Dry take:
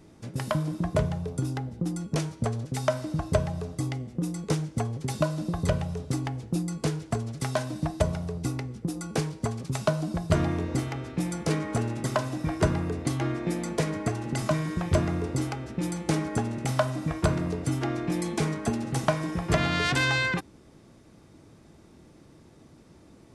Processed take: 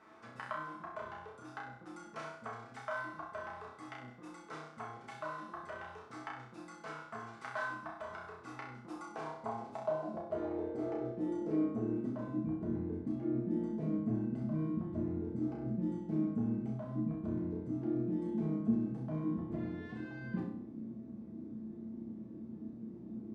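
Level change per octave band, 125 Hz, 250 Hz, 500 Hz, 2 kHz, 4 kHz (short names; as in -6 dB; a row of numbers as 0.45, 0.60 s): -15.0 dB, -6.0 dB, -11.0 dB, -13.5 dB, under -20 dB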